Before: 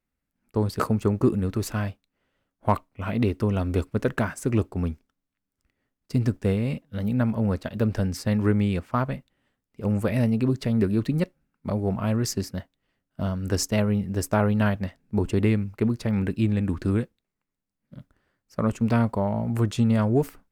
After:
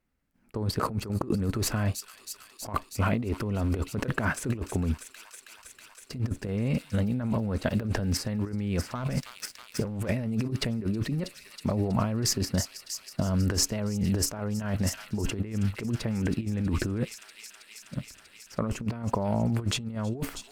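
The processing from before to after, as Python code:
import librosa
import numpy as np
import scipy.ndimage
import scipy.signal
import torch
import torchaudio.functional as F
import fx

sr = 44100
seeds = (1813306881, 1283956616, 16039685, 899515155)

p1 = fx.high_shelf(x, sr, hz=4800.0, db=-5.5)
p2 = fx.level_steps(p1, sr, step_db=20)
p3 = p1 + (p2 * 10.0 ** (2.0 / 20.0))
p4 = fx.notch(p3, sr, hz=3600.0, q=30.0)
p5 = p4 + fx.echo_wet_highpass(p4, sr, ms=321, feedback_pct=84, hz=4400.0, wet_db=-6.0, dry=0)
p6 = fx.leveller(p5, sr, passes=2, at=(8.95, 10.08))
p7 = fx.over_compress(p6, sr, threshold_db=-27.0, ratio=-1.0)
y = p7 * 10.0 ** (-2.0 / 20.0)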